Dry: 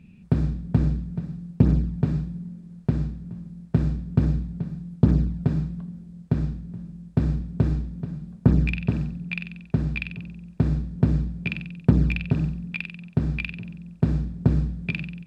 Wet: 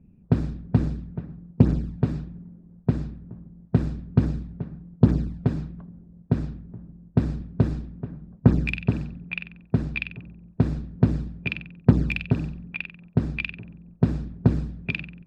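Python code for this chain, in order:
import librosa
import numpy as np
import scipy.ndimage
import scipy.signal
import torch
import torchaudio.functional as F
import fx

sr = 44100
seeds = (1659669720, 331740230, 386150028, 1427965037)

y = fx.hpss(x, sr, part='harmonic', gain_db=-11)
y = fx.env_lowpass(y, sr, base_hz=700.0, full_db=-22.5)
y = y * librosa.db_to_amplitude(3.0)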